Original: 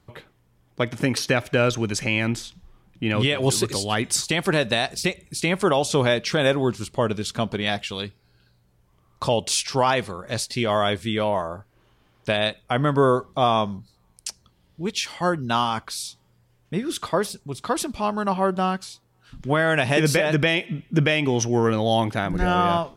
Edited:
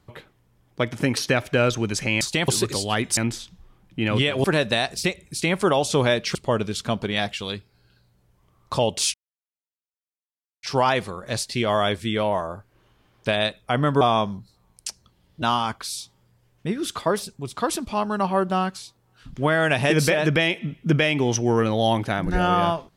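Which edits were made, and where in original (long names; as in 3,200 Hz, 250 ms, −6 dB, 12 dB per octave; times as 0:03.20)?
0:02.21–0:03.48: swap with 0:04.17–0:04.44
0:06.35–0:06.85: remove
0:09.64: splice in silence 1.49 s
0:13.02–0:13.41: remove
0:14.82–0:15.49: remove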